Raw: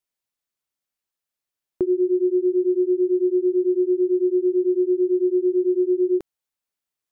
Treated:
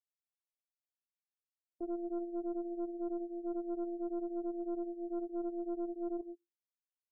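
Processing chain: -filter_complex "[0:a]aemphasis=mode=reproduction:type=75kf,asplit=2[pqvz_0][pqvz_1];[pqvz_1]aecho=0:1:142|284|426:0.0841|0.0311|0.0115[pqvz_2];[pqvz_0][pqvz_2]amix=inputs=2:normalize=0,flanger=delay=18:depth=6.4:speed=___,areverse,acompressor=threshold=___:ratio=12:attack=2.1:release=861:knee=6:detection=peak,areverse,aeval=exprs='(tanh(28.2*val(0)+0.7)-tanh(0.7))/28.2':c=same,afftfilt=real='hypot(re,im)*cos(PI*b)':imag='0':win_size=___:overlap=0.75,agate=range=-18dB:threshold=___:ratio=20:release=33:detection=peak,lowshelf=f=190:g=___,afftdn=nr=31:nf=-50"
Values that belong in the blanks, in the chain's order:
0.61, -27dB, 512, -53dB, -8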